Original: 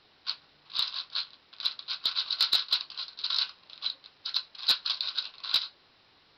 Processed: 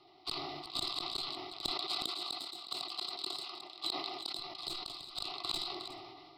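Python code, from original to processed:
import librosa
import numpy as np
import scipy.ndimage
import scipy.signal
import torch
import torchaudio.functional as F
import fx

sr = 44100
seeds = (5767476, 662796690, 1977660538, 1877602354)

y = fx.diode_clip(x, sr, knee_db=-26.5)
y = fx.peak_eq(y, sr, hz=12000.0, db=2.5, octaves=0.63)
y = fx.small_body(y, sr, hz=(370.0, 720.0, 1200.0, 2000.0), ring_ms=35, db=15)
y = fx.level_steps(y, sr, step_db=9)
y = fx.high_shelf(y, sr, hz=7900.0, db=-4.5)
y = fx.fixed_phaser(y, sr, hz=320.0, stages=8)
y = fx.gate_flip(y, sr, shuts_db=-26.0, range_db=-25)
y = fx.highpass(y, sr, hz=220.0, slope=12, at=(1.71, 4.39))
y = y + 10.0 ** (-17.0 / 20.0) * np.pad(y, (int(362 * sr / 1000.0), 0))[:len(y)]
y = fx.sustainer(y, sr, db_per_s=27.0)
y = F.gain(torch.from_numpy(y), 3.5).numpy()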